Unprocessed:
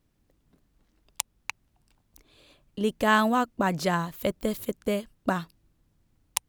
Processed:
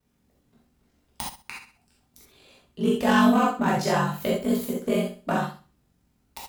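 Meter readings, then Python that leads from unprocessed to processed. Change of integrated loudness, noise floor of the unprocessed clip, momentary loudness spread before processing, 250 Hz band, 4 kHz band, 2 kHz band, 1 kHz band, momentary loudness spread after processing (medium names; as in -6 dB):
+3.5 dB, -71 dBFS, 14 LU, +6.0 dB, +1.0 dB, 0.0 dB, +2.0 dB, 17 LU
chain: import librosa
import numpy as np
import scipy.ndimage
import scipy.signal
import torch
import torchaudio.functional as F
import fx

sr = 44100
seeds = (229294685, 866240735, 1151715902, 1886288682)

y = fx.tracing_dist(x, sr, depth_ms=0.11)
y = fx.highpass(y, sr, hz=93.0, slope=6)
y = 10.0 ** (-15.5 / 20.0) * np.tanh(y / 10.0 ** (-15.5 / 20.0))
y = fx.room_flutter(y, sr, wall_m=11.0, rt60_s=0.36)
y = y * np.sin(2.0 * np.pi * 23.0 * np.arange(len(y)) / sr)
y = fx.rev_gated(y, sr, seeds[0], gate_ms=100, shape='flat', drr_db=-5.0)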